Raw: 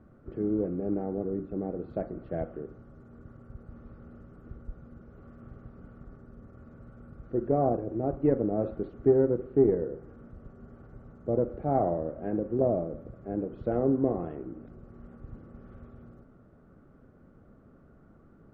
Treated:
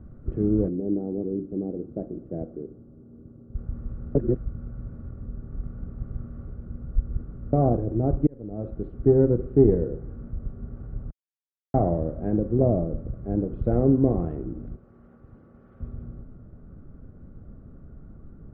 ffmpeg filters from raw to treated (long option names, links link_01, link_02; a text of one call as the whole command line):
ffmpeg -i in.wav -filter_complex "[0:a]asplit=3[link_01][link_02][link_03];[link_01]afade=type=out:start_time=0.68:duration=0.02[link_04];[link_02]bandpass=frequency=330:width_type=q:width=1.3,afade=type=in:start_time=0.68:duration=0.02,afade=type=out:start_time=3.54:duration=0.02[link_05];[link_03]afade=type=in:start_time=3.54:duration=0.02[link_06];[link_04][link_05][link_06]amix=inputs=3:normalize=0,asettb=1/sr,asplit=3[link_07][link_08][link_09];[link_07]atrim=end=14.764[link_10];[link_08]atrim=start=14.76:end=15.8,asetpts=PTS-STARTPTS,afade=type=in:duration=0.004:curve=qsin,afade=type=out:start_time=1.036:duration=0.004:curve=qsin,highpass=frequency=740:poles=1[link_11];[link_09]atrim=start=15.796[link_12];[link_10][link_11]acrossfade=duration=0.004:curve1=hsin:curve2=qsin[link_13];[link_13][link_12]acrossfade=duration=0.004:curve1=qsin:curve2=hsin,asplit=6[link_14][link_15][link_16][link_17][link_18][link_19];[link_14]atrim=end=4.152[link_20];[link_15]atrim=start=4.148:end=7.532,asetpts=PTS-STARTPTS,areverse[link_21];[link_16]atrim=start=7.528:end=8.27,asetpts=PTS-STARTPTS,afade=type=out:start_time=0.738:duration=0.004:curve=hsin[link_22];[link_17]atrim=start=8.27:end=11.11,asetpts=PTS-STARTPTS,afade=type=in:duration=0.97,afade=type=out:start_time=2.836:duration=0.004:curve=hsin[link_23];[link_18]atrim=start=11.11:end=11.74,asetpts=PTS-STARTPTS,volume=0[link_24];[link_19]atrim=start=11.74,asetpts=PTS-STARTPTS,afade=type=in:duration=0.004:curve=hsin[link_25];[link_20][link_21]acrossfade=duration=0.004:curve1=hsin:curve2=hsin[link_26];[link_22][link_23][link_24][link_25]concat=n=4:v=0:a=1[link_27];[link_26][link_27]acrossfade=duration=0.004:curve1=hsin:curve2=hsin,aemphasis=mode=reproduction:type=riaa" out.wav